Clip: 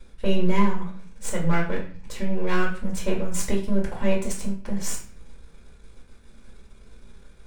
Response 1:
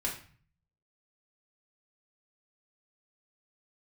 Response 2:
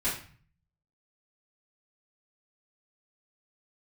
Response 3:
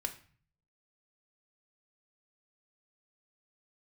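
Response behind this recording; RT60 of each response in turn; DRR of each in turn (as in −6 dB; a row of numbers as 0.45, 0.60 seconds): 1; 0.45, 0.45, 0.45 seconds; −3.0, −11.5, 5.5 decibels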